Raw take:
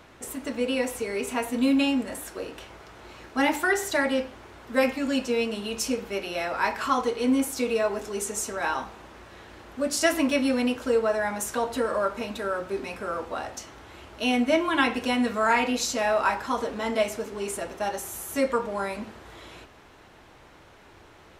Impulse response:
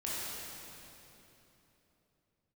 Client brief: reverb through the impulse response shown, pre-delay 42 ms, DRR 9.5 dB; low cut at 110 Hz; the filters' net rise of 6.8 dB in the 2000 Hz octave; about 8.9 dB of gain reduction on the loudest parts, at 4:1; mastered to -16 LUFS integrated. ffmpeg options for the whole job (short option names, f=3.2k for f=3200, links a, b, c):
-filter_complex "[0:a]highpass=110,equalizer=f=2k:t=o:g=8.5,acompressor=threshold=-24dB:ratio=4,asplit=2[a][b];[1:a]atrim=start_sample=2205,adelay=42[c];[b][c]afir=irnorm=-1:irlink=0,volume=-14dB[d];[a][d]amix=inputs=2:normalize=0,volume=12dB"